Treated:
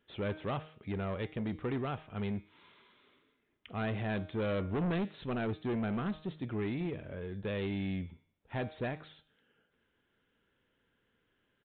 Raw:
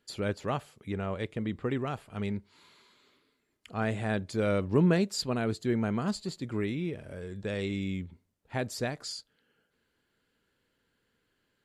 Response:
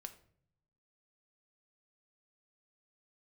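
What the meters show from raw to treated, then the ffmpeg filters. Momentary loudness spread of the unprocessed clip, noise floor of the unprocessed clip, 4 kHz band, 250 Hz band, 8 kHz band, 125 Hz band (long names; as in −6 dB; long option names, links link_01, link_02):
12 LU, −77 dBFS, −8.5 dB, −4.5 dB, below −35 dB, −4.5 dB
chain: -af "bandreject=frequency=155.8:width_type=h:width=4,bandreject=frequency=311.6:width_type=h:width=4,bandreject=frequency=467.4:width_type=h:width=4,bandreject=frequency=623.2:width_type=h:width=4,bandreject=frequency=779:width_type=h:width=4,bandreject=frequency=934.8:width_type=h:width=4,bandreject=frequency=1090.6:width_type=h:width=4,bandreject=frequency=1246.4:width_type=h:width=4,bandreject=frequency=1402.2:width_type=h:width=4,bandreject=frequency=1558:width_type=h:width=4,bandreject=frequency=1713.8:width_type=h:width=4,bandreject=frequency=1869.6:width_type=h:width=4,bandreject=frequency=2025.4:width_type=h:width=4,bandreject=frequency=2181.2:width_type=h:width=4,bandreject=frequency=2337:width_type=h:width=4,bandreject=frequency=2492.8:width_type=h:width=4,bandreject=frequency=2648.6:width_type=h:width=4,bandreject=frequency=2804.4:width_type=h:width=4,bandreject=frequency=2960.2:width_type=h:width=4,bandreject=frequency=3116:width_type=h:width=4,bandreject=frequency=3271.8:width_type=h:width=4,bandreject=frequency=3427.6:width_type=h:width=4,bandreject=frequency=3583.4:width_type=h:width=4,bandreject=frequency=3739.2:width_type=h:width=4,bandreject=frequency=3895:width_type=h:width=4,bandreject=frequency=4050.8:width_type=h:width=4,bandreject=frequency=4206.6:width_type=h:width=4,bandreject=frequency=4362.4:width_type=h:width=4,bandreject=frequency=4518.2:width_type=h:width=4,bandreject=frequency=4674:width_type=h:width=4,bandreject=frequency=4829.8:width_type=h:width=4,aresample=8000,asoftclip=type=tanh:threshold=-29.5dB,aresample=44100"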